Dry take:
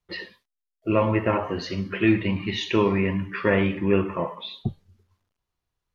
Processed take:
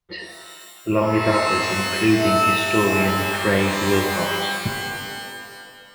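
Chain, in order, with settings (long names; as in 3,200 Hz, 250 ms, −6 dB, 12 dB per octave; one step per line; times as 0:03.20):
reverb with rising layers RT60 2 s, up +12 semitones, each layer −2 dB, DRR 3.5 dB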